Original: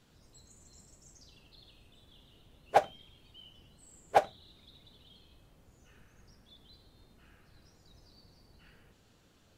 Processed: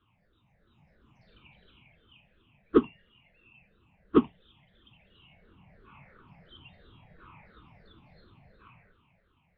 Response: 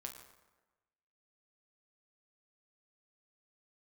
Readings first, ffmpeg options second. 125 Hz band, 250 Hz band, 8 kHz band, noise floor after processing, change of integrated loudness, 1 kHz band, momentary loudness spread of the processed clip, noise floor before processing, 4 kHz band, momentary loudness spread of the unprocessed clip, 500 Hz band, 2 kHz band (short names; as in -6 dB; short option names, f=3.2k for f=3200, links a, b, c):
+8.0 dB, +24.5 dB, under -25 dB, -70 dBFS, +3.5 dB, -9.0 dB, 18 LU, -65 dBFS, -4.0 dB, 17 LU, +4.0 dB, -6.5 dB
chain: -af "afftfilt=real='re*pow(10,20/40*sin(2*PI*(0.8*log(max(b,1)*sr/1024/100)/log(2)-(-2.9)*(pts-256)/sr)))':imag='im*pow(10,20/40*sin(2*PI*(0.8*log(max(b,1)*sr/1024/100)/log(2)-(-2.9)*(pts-256)/sr)))':win_size=1024:overlap=0.75,dynaudnorm=f=200:g=11:m=13.5dB,highpass=f=190:t=q:w=0.5412,highpass=f=190:t=q:w=1.307,lowpass=f=3.2k:t=q:w=0.5176,lowpass=f=3.2k:t=q:w=0.7071,lowpass=f=3.2k:t=q:w=1.932,afreqshift=-360,volume=-6.5dB"